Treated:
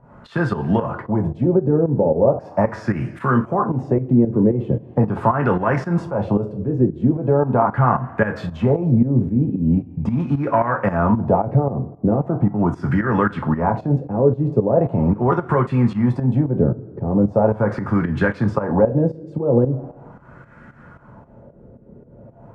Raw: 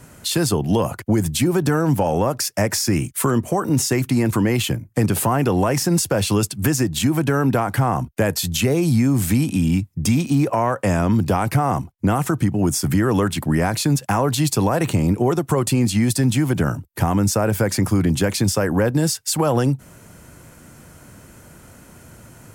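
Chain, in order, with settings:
coupled-rooms reverb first 0.23 s, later 1.6 s, from −19 dB, DRR 3 dB
auto-filter low-pass sine 0.4 Hz 430–1,600 Hz
fake sidechain pumping 113 BPM, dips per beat 2, −12 dB, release 216 ms
level −1 dB

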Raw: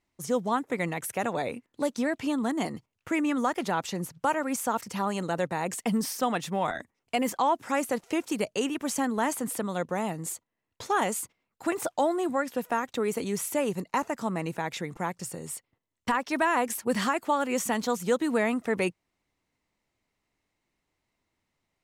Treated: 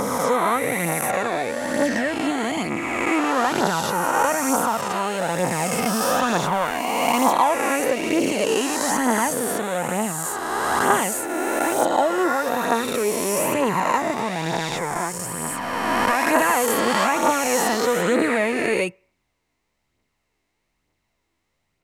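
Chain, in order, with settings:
peak hold with a rise ahead of every peak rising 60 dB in 2.75 s
phase shifter 1.1 Hz, delay 3.1 ms, feedback 40%
on a send: convolution reverb RT60 0.50 s, pre-delay 3 ms, DRR 23.5 dB
on the sum: level +1.5 dB

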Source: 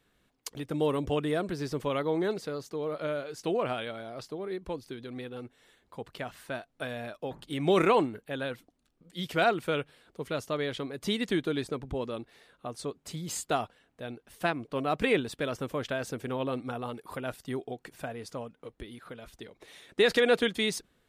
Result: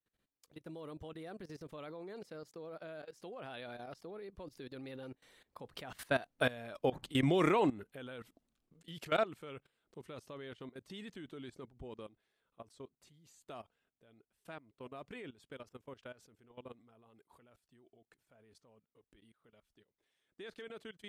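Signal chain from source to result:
source passing by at 0:06.44, 22 m/s, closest 15 metres
output level in coarse steps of 18 dB
level +7.5 dB

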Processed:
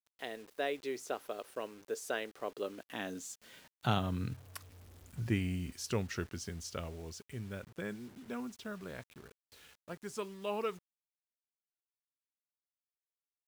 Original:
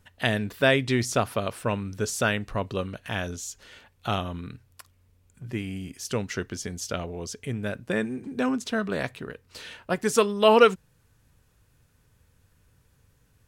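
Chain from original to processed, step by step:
source passing by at 0:04.81, 18 m/s, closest 8.4 metres
high-pass filter sweep 390 Hz → 60 Hz, 0:02.53–0:04.87
bit reduction 10 bits
level +1.5 dB

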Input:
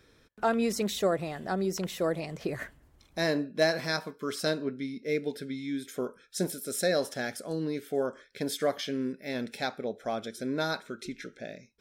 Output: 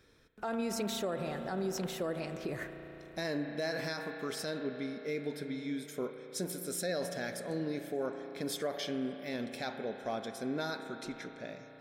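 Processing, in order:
convolution reverb RT60 4.4 s, pre-delay 34 ms, DRR 8 dB
brickwall limiter −23 dBFS, peak gain reduction 10 dB
level −3.5 dB

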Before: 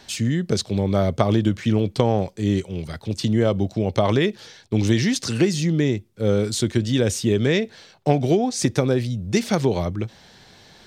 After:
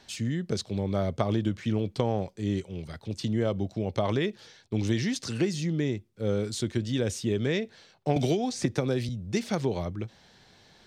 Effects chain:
high-shelf EQ 11,000 Hz −6 dB
0:08.16–0:09.09: multiband upward and downward compressor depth 100%
level −8 dB

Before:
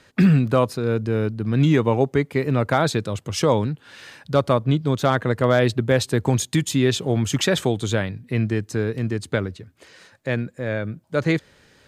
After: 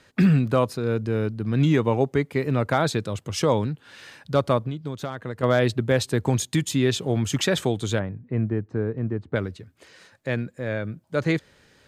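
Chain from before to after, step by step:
0:04.62–0:05.43: downward compressor 12 to 1, threshold −24 dBFS, peak gain reduction 12 dB
0:07.99–0:09.36: low-pass filter 1,200 Hz 12 dB per octave
level −2.5 dB

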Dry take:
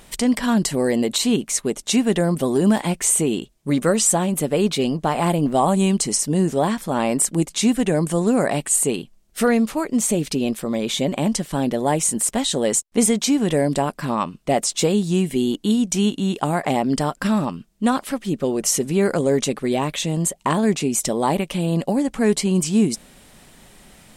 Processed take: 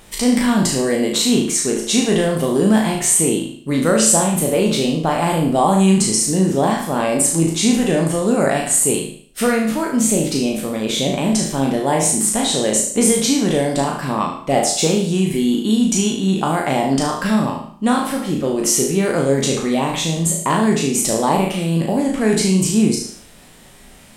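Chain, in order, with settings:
peak hold with a decay on every bin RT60 0.48 s
flutter between parallel walls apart 6.3 metres, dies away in 0.47 s

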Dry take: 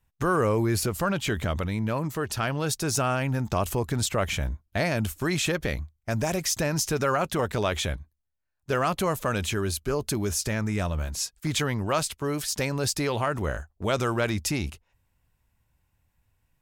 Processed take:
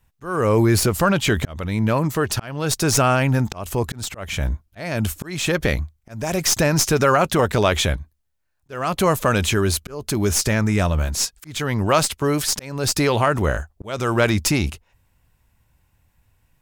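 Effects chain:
stylus tracing distortion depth 0.02 ms
volume swells 383 ms
level +8.5 dB

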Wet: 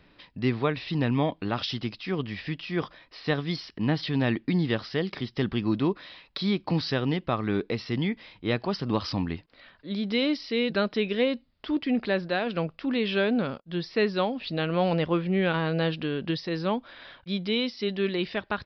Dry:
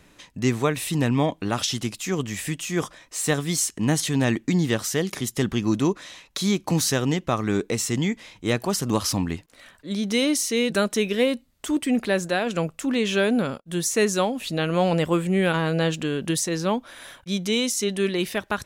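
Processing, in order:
downsampling to 11,025 Hz
level −3.5 dB

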